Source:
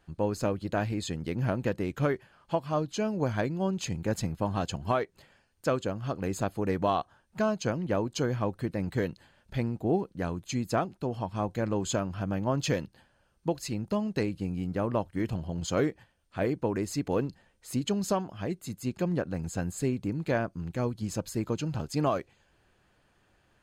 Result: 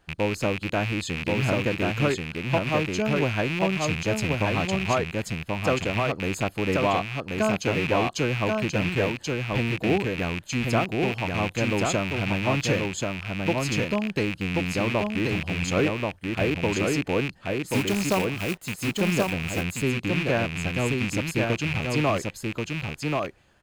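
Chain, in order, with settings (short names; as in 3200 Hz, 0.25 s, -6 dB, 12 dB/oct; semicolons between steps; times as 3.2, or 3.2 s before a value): rattling part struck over -37 dBFS, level -22 dBFS; 17.71–18.8 companded quantiser 4-bit; echo 1.083 s -3 dB; gain +3 dB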